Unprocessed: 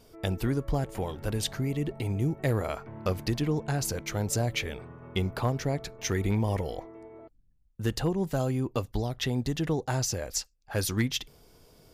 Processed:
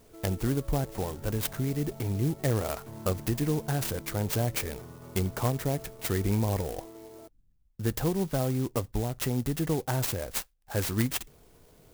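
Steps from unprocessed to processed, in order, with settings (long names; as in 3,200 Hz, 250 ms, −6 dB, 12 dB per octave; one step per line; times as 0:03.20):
converter with an unsteady clock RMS 0.076 ms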